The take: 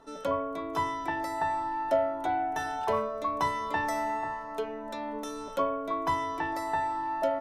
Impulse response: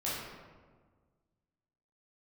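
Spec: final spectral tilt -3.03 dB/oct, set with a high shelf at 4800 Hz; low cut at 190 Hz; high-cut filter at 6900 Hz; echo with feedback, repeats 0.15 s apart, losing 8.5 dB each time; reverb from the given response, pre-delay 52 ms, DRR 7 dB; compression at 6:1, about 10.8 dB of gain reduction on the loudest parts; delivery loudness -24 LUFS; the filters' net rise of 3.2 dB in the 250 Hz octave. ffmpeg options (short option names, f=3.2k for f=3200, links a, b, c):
-filter_complex "[0:a]highpass=190,lowpass=6.9k,equalizer=f=250:t=o:g=5,highshelf=f=4.8k:g=-8.5,acompressor=threshold=-33dB:ratio=6,aecho=1:1:150|300|450|600:0.376|0.143|0.0543|0.0206,asplit=2[a][b];[1:a]atrim=start_sample=2205,adelay=52[c];[b][c]afir=irnorm=-1:irlink=0,volume=-12.5dB[d];[a][d]amix=inputs=2:normalize=0,volume=12dB"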